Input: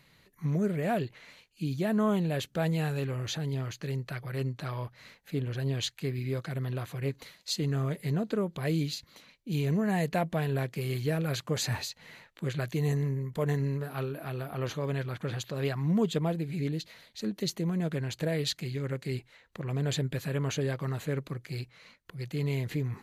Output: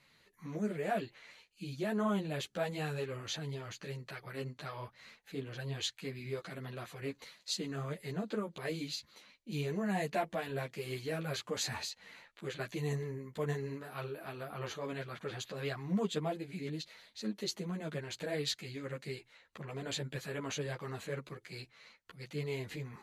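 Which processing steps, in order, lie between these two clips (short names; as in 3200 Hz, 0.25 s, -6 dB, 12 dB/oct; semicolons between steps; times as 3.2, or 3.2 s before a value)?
LPF 11000 Hz 12 dB/oct; low shelf 250 Hz -9.5 dB; ensemble effect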